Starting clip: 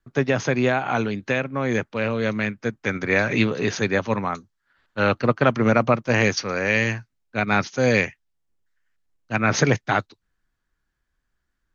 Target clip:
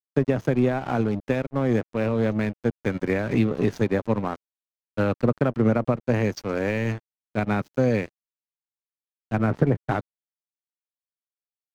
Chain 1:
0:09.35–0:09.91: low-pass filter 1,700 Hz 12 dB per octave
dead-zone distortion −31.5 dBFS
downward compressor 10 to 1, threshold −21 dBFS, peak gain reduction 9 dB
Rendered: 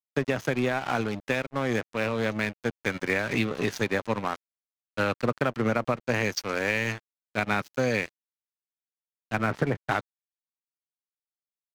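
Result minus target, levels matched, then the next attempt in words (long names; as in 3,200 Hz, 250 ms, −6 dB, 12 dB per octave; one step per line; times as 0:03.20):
1,000 Hz band +4.0 dB
0:09.35–0:09.91: low-pass filter 1,700 Hz 12 dB per octave
dead-zone distortion −31.5 dBFS
downward compressor 10 to 1, threshold −21 dBFS, peak gain reduction 9 dB
tilt shelving filter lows +8 dB, about 890 Hz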